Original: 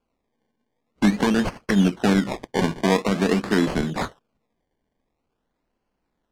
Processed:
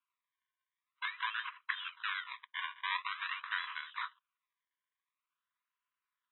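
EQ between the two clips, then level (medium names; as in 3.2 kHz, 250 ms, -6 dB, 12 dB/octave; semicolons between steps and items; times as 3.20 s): brick-wall FIR band-pass 950–4000 Hz; -7.5 dB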